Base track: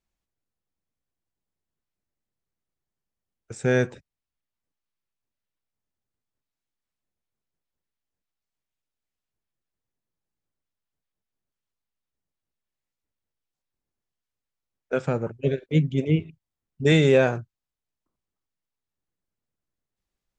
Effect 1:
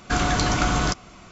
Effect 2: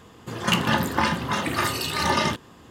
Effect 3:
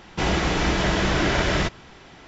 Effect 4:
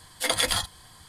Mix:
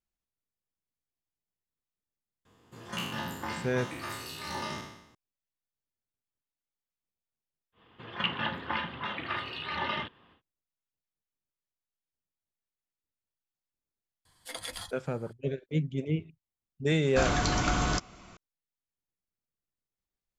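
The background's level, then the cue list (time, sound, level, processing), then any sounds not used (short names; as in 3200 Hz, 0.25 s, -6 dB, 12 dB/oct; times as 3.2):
base track -8.5 dB
2.45 add 2 -17 dB + spectral trails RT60 0.85 s
7.72 add 2 -15 dB, fades 0.10 s + EQ curve 270 Hz 0 dB, 3300 Hz +9 dB, 7100 Hz -26 dB
14.25 add 4 -15.5 dB
17.06 add 1 -6 dB
not used: 3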